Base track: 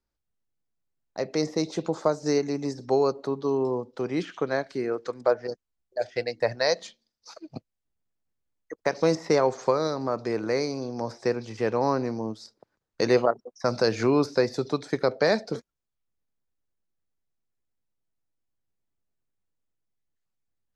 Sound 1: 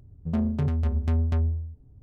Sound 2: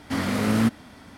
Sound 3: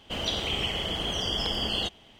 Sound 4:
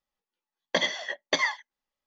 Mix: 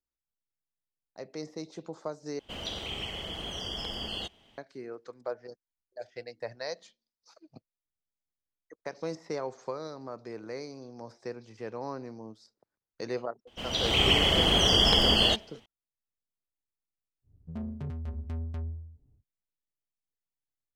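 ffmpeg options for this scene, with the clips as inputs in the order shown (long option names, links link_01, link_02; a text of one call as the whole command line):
ffmpeg -i bed.wav -i cue0.wav -i cue1.wav -i cue2.wav -filter_complex "[3:a]asplit=2[link_01][link_02];[0:a]volume=-13dB[link_03];[link_02]dynaudnorm=framelen=110:gausssize=7:maxgain=15dB[link_04];[link_03]asplit=2[link_05][link_06];[link_05]atrim=end=2.394[link_07];[link_01]atrim=end=2.19,asetpts=PTS-STARTPTS,volume=-7.5dB[link_08];[link_06]atrim=start=4.576[link_09];[link_04]atrim=end=2.19,asetpts=PTS-STARTPTS,volume=-6.5dB,afade=type=in:duration=0.004:curve=hsin,afade=type=out:start_time=2.186:duration=0.004:curve=hsin,adelay=13470[link_10];[1:a]atrim=end=2.02,asetpts=PTS-STARTPTS,volume=-11.5dB,afade=type=in:duration=0.1,afade=type=out:start_time=1.92:duration=0.1,adelay=17220[link_11];[link_07][link_08]acrossfade=duration=0.004:curve1=hsin:curve2=hsin[link_12];[link_12][link_09]acrossfade=duration=0.004:curve1=hsin:curve2=hsin[link_13];[link_13][link_10][link_11]amix=inputs=3:normalize=0" out.wav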